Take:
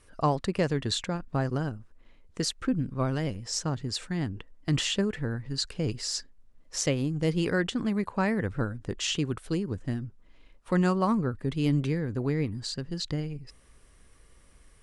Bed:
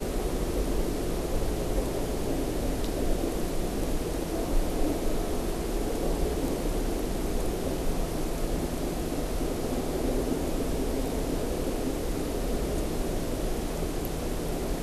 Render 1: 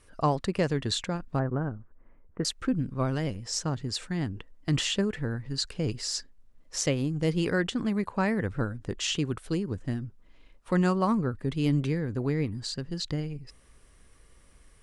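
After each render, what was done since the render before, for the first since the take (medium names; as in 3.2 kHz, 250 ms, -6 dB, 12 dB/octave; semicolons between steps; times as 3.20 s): 1.39–2.45 s: low-pass 1.7 kHz 24 dB/octave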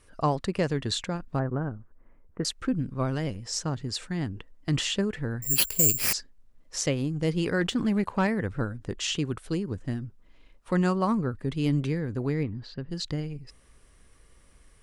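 5.42–6.13 s: careless resampling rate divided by 6×, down none, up zero stuff; 7.61–8.27 s: waveshaping leveller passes 1; 12.43–12.91 s: distance through air 310 m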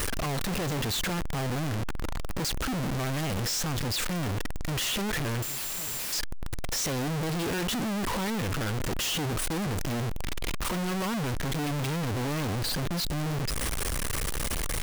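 one-bit comparator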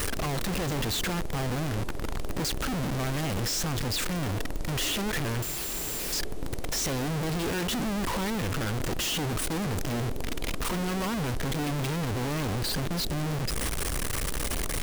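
add bed -11.5 dB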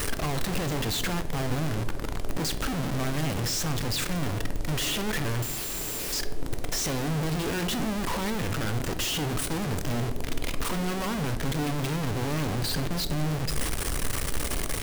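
simulated room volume 200 m³, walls mixed, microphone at 0.31 m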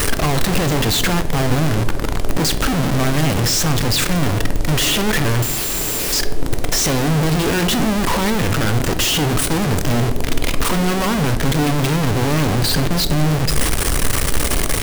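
trim +11.5 dB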